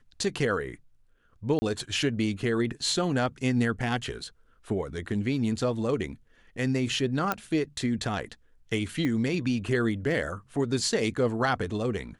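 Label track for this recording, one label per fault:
1.590000	1.620000	drop-out 30 ms
7.320000	7.320000	click −12 dBFS
9.050000	9.050000	click −18 dBFS

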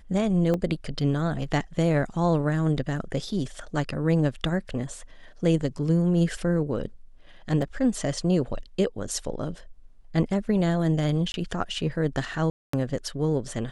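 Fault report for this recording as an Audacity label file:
0.540000	0.540000	drop-out 2.1 ms
7.620000	7.620000	drop-out 3.7 ms
11.320000	11.340000	drop-out 21 ms
12.500000	12.730000	drop-out 234 ms

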